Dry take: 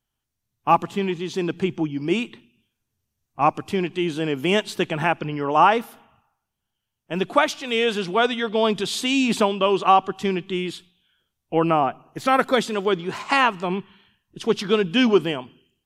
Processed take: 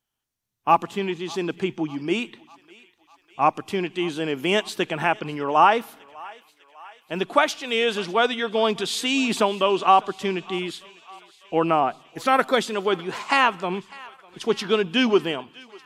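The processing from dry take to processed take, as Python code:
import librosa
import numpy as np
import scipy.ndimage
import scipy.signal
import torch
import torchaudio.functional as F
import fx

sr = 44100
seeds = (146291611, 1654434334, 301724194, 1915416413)

y = fx.low_shelf(x, sr, hz=160.0, db=-10.5)
y = fx.echo_thinned(y, sr, ms=600, feedback_pct=68, hz=690.0, wet_db=-21)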